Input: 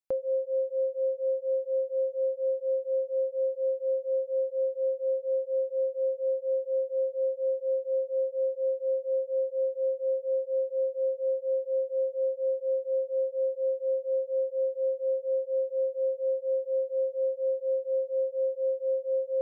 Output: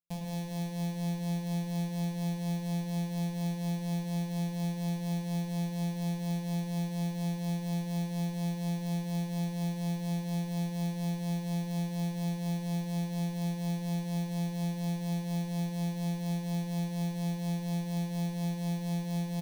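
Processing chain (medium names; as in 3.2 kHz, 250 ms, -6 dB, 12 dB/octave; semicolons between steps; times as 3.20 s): sorted samples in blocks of 256 samples; static phaser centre 370 Hz, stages 6; echo from a far wall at 18 m, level -7 dB; reverberation RT60 1.4 s, pre-delay 5 ms, DRR 1 dB; trim -8.5 dB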